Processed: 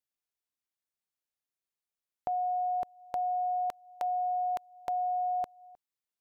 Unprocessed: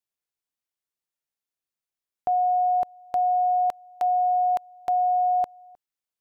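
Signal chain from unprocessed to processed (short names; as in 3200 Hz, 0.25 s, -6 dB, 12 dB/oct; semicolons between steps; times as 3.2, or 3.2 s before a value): dynamic EQ 740 Hz, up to -5 dB, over -35 dBFS; gain -4 dB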